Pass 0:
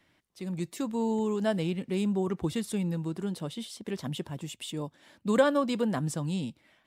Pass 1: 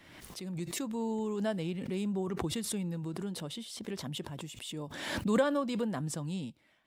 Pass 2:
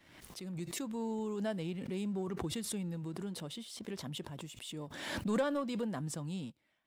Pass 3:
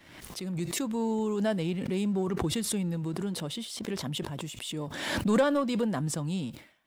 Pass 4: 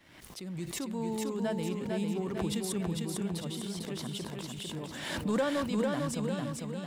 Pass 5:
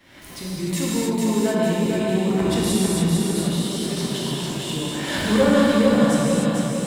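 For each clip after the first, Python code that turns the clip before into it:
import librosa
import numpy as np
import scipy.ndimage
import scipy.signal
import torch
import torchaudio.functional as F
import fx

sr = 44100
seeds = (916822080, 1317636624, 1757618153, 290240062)

y1 = fx.pre_swell(x, sr, db_per_s=44.0)
y1 = y1 * 10.0 ** (-5.5 / 20.0)
y2 = fx.leveller(y1, sr, passes=1)
y2 = y2 * 10.0 ** (-7.0 / 20.0)
y3 = fx.sustainer(y2, sr, db_per_s=120.0)
y3 = y3 * 10.0 ** (8.0 / 20.0)
y4 = fx.echo_feedback(y3, sr, ms=450, feedback_pct=50, wet_db=-3.5)
y4 = y4 * 10.0 ** (-5.5 / 20.0)
y5 = fx.rev_gated(y4, sr, seeds[0], gate_ms=330, shape='flat', drr_db=-6.5)
y5 = y5 * 10.0 ** (5.5 / 20.0)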